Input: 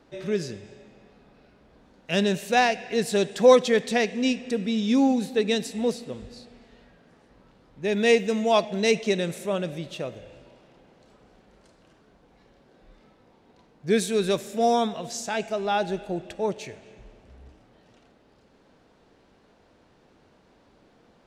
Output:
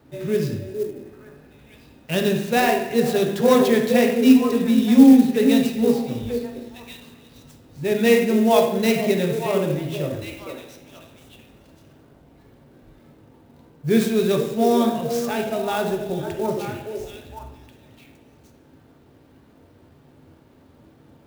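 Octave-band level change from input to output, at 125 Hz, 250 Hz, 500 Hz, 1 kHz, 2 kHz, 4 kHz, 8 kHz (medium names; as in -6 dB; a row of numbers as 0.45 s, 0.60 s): +7.0 dB, +9.5 dB, +3.5 dB, +1.5 dB, +1.5 dB, +0.5 dB, +1.5 dB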